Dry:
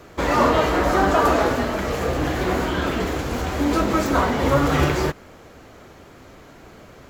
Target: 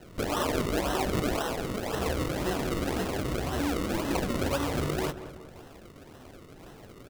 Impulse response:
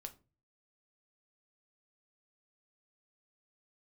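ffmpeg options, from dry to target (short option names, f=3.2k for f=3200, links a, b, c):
-filter_complex "[0:a]asettb=1/sr,asplit=3[a][b][c];[a]atrim=end=1.424[d];[b]atrim=start=1.42:end=1.94,asetpts=PTS-STARTPTS,afade=t=in:d=0.004:c=qsin,afade=t=out:st=0.516:d=0.004:c=qsin,highpass=f=740:p=1[e];[c]atrim=start=1.936[f];[d][e]acrossfade=d=0.004:c1=hsin:c2=qsin[g];[g][f]acrossfade=d=0.004:c1=qsin:c2=hsin,acompressor=threshold=-22dB:ratio=6,flanger=delay=5.4:depth=5.7:regen=-42:speed=1.2:shape=triangular,acrusher=samples=37:mix=1:aa=0.000001:lfo=1:lforange=37:lforate=1.9,asplit=2[h][i];[i]adelay=189,lowpass=f=1.8k:p=1,volume=-12dB,asplit=2[j][k];[k]adelay=189,lowpass=f=1.8k:p=1,volume=0.49,asplit=2[l][m];[m]adelay=189,lowpass=f=1.8k:p=1,volume=0.49,asplit=2[n][o];[o]adelay=189,lowpass=f=1.8k:p=1,volume=0.49,asplit=2[p][q];[q]adelay=189,lowpass=f=1.8k:p=1,volume=0.49[r];[j][l][n][p][r]amix=inputs=5:normalize=0[s];[h][s]amix=inputs=2:normalize=0"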